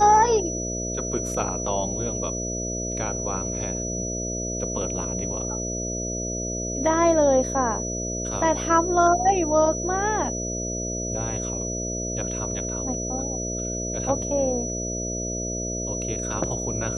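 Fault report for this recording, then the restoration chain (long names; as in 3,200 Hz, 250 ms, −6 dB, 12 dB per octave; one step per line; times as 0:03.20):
mains buzz 60 Hz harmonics 11 −31 dBFS
whistle 5,900 Hz −30 dBFS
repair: hum removal 60 Hz, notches 11
notch filter 5,900 Hz, Q 30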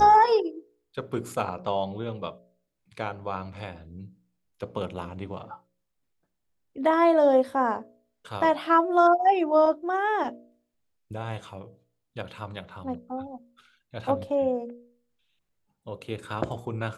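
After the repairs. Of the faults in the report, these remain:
none of them is left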